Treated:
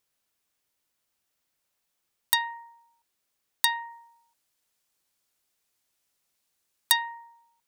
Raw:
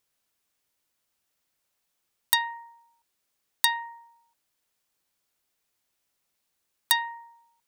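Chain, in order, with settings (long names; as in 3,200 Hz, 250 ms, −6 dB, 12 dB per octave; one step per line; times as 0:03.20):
0:03.90–0:06.97: parametric band 8,300 Hz +3.5 dB 2.4 octaves
level −1 dB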